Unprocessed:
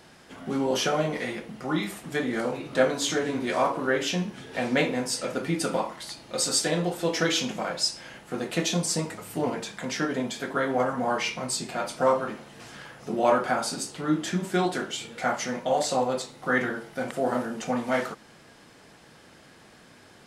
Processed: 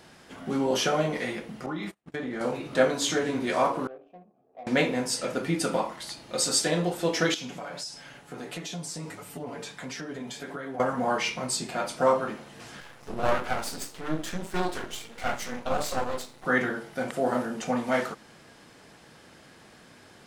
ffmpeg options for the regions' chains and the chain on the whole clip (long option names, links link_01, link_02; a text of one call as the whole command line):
ffmpeg -i in.wav -filter_complex "[0:a]asettb=1/sr,asplit=3[link_01][link_02][link_03];[link_01]atrim=end=1.664[link_04];[link_02]atrim=start=1.66:end=2.41,asetpts=PTS-STARTPTS,afade=type=in:duration=0.004:curve=qsin,afade=type=out:start_time=0.746:duration=0.004:curve=qsin,lowpass=frequency=3100:poles=1,agate=range=-39dB:threshold=-37dB:ratio=16:release=100:detection=peak,acompressor=threshold=-29dB:ratio=6:attack=3.2:release=140:knee=1:detection=peak[link_05];[link_03]atrim=start=2.406[link_06];[link_04][link_05]acrossfade=duration=0.004:curve1=hsin:curve2=qsin[link_07];[link_07][link_06]acrossfade=duration=0.004:curve1=qsin:curve2=hsin,asettb=1/sr,asplit=3[link_08][link_09][link_10];[link_08]atrim=end=3.874[link_11];[link_09]atrim=start=3.87:end=4.67,asetpts=PTS-STARTPTS,afade=type=in:duration=0.004:curve=qsin,afade=type=out:start_time=0.796:duration=0.004:curve=qsin,asplit=3[link_12][link_13][link_14];[link_12]bandpass=frequency=730:width_type=q:width=8,volume=0dB[link_15];[link_13]bandpass=frequency=1090:width_type=q:width=8,volume=-6dB[link_16];[link_14]bandpass=frequency=2440:width_type=q:width=8,volume=-9dB[link_17];[link_15][link_16][link_17]amix=inputs=3:normalize=0,equalizer=frequency=2000:width=0.4:gain=-12,adynamicsmooth=sensitivity=8:basefreq=670[link_18];[link_10]atrim=start=4.666[link_19];[link_11][link_18]acrossfade=duration=0.004:curve1=hsin:curve2=qsin[link_20];[link_20][link_19]acrossfade=duration=0.004:curve1=qsin:curve2=hsin,asettb=1/sr,asplit=3[link_21][link_22][link_23];[link_21]atrim=end=7.344[link_24];[link_22]atrim=start=7.34:end=10.8,asetpts=PTS-STARTPTS,afade=type=in:duration=0.004:curve=qsin,afade=type=out:start_time=3.456:duration=0.004:curve=qsin,aecho=1:1:7:0.53,atrim=end_sample=152586,acompressor=threshold=-29dB:ratio=6:attack=3.2:release=140:knee=1:detection=peak,flanger=delay=4.4:depth=9.5:regen=-51:speed=1.5:shape=sinusoidal[link_25];[link_23]atrim=start=10.796[link_26];[link_24][link_25]acrossfade=duration=0.004:curve1=hsin:curve2=qsin[link_27];[link_27][link_26]acrossfade=duration=0.004:curve1=qsin:curve2=hsin,asettb=1/sr,asplit=3[link_28][link_29][link_30];[link_28]atrim=end=12.804[link_31];[link_29]atrim=start=12.8:end=16.45,asetpts=PTS-STARTPTS,afade=type=in:duration=0.004:curve=qsin,afade=type=out:start_time=3.646:duration=0.004:curve=qsin,bandreject=frequency=50:width_type=h:width=6,bandreject=frequency=100:width_type=h:width=6,bandreject=frequency=150:width_type=h:width=6,bandreject=frequency=200:width_type=h:width=6,bandreject=frequency=250:width_type=h:width=6,bandreject=frequency=300:width_type=h:width=6,bandreject=frequency=350:width_type=h:width=6,asplit=2[link_32][link_33];[link_33]adelay=25,volume=-13dB[link_34];[link_32][link_34]amix=inputs=2:normalize=0,atrim=end_sample=160965,aeval=exprs='max(val(0),0)':channel_layout=same[link_35];[link_30]atrim=start=16.446[link_36];[link_31][link_35]acrossfade=duration=0.004:curve1=hsin:curve2=qsin[link_37];[link_37][link_36]acrossfade=duration=0.004:curve1=qsin:curve2=hsin" out.wav